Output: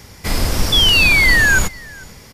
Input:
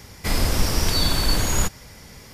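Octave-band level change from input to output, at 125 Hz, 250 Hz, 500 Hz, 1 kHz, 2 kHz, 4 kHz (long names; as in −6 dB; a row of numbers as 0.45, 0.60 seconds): +3.0, +3.0, +3.0, +3.0, +19.5, +10.5 decibels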